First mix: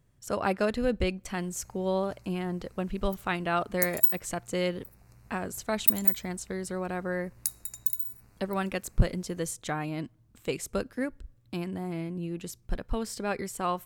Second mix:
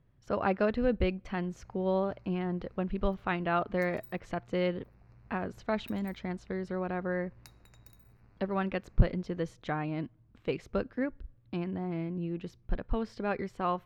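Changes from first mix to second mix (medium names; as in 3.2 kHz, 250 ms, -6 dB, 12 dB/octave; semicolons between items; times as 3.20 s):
background: send off; master: add distance through air 280 m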